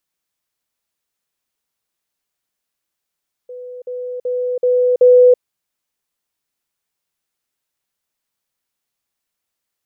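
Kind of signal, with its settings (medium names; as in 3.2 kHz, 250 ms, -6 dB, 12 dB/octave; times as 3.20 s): level ladder 497 Hz -29 dBFS, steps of 6 dB, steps 5, 0.33 s 0.05 s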